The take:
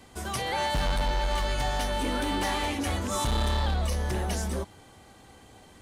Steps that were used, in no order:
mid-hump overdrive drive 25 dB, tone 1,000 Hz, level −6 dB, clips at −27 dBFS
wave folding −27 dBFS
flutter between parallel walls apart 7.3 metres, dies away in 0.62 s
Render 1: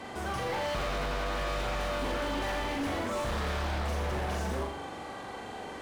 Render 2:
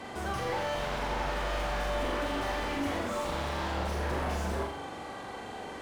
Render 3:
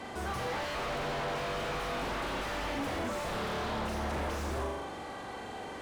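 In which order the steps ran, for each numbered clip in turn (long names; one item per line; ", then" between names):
mid-hump overdrive, then flutter between parallel walls, then wave folding
wave folding, then mid-hump overdrive, then flutter between parallel walls
flutter between parallel walls, then wave folding, then mid-hump overdrive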